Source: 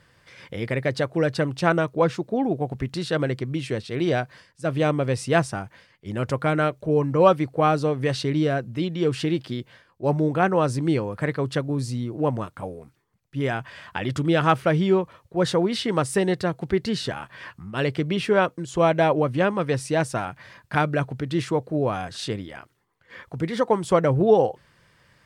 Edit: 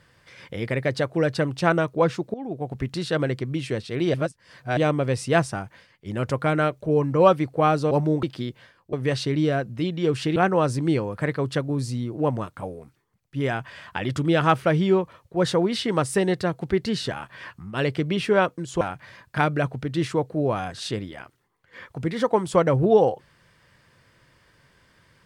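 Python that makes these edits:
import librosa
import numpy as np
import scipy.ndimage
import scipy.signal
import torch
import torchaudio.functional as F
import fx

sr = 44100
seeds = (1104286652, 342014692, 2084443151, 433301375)

y = fx.edit(x, sr, fx.fade_in_from(start_s=2.34, length_s=0.49, floor_db=-16.5),
    fx.reverse_span(start_s=4.14, length_s=0.63),
    fx.swap(start_s=7.91, length_s=1.43, other_s=10.04, other_length_s=0.32),
    fx.cut(start_s=18.81, length_s=1.37), tone=tone)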